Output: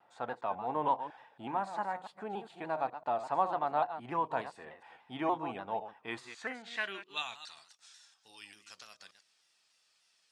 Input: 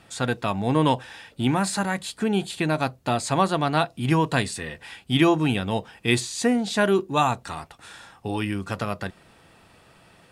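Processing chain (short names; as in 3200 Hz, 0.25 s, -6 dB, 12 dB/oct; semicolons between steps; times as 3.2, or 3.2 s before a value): reverse delay 0.138 s, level -11 dB; band-pass sweep 830 Hz -> 5700 Hz, 5.92–7.72; shaped vibrato saw down 3.4 Hz, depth 100 cents; gain -4 dB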